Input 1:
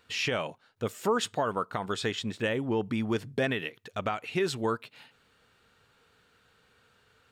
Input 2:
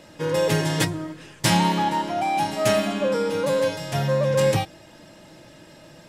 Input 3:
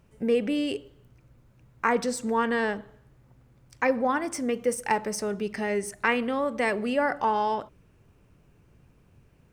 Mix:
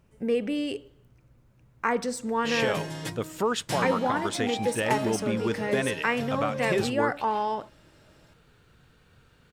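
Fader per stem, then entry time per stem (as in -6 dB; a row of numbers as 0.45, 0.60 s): +0.5, -12.5, -2.0 dB; 2.35, 2.25, 0.00 s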